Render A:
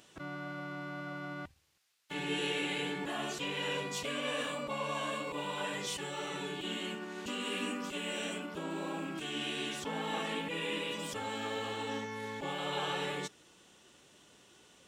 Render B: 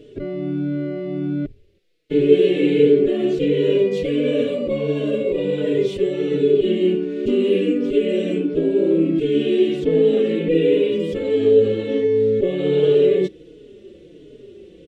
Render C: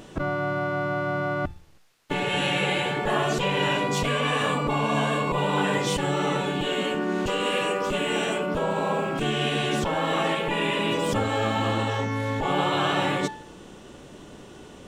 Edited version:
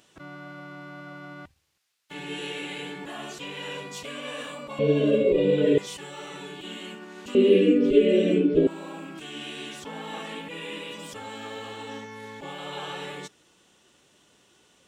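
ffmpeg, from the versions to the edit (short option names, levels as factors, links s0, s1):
-filter_complex "[1:a]asplit=2[s0][s1];[0:a]asplit=3[s2][s3][s4];[s2]atrim=end=4.792[s5];[s0]atrim=start=4.788:end=5.782[s6];[s3]atrim=start=5.778:end=7.352[s7];[s1]atrim=start=7.348:end=8.672[s8];[s4]atrim=start=8.668[s9];[s5][s6]acrossfade=d=0.004:c1=hsin:c2=hsin[s10];[s10][s7]acrossfade=d=0.004:c1=hsin:c2=hsin[s11];[s11][s8]acrossfade=d=0.004:c1=hsin:c2=hsin[s12];[s12][s9]acrossfade=d=0.004:c1=hsin:c2=hsin"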